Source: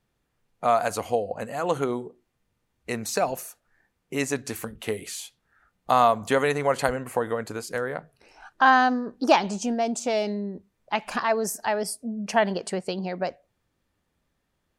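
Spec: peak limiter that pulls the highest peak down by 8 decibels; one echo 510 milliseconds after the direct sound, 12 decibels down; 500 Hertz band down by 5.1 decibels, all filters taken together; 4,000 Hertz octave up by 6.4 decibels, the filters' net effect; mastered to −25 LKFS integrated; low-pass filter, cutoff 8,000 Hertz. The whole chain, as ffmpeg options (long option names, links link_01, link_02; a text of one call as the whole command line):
ffmpeg -i in.wav -af "lowpass=8000,equalizer=frequency=500:width_type=o:gain=-7,equalizer=frequency=4000:width_type=o:gain=8.5,alimiter=limit=-13dB:level=0:latency=1,aecho=1:1:510:0.251,volume=4dB" out.wav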